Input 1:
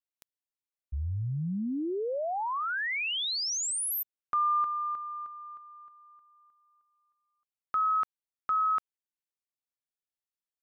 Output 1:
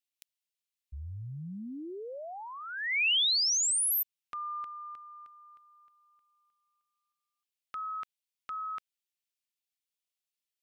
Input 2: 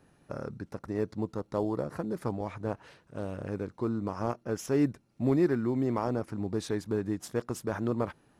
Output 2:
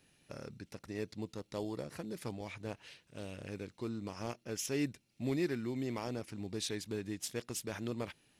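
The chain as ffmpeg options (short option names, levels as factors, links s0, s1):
-af "highshelf=f=1800:t=q:w=1.5:g=11.5,volume=0.376"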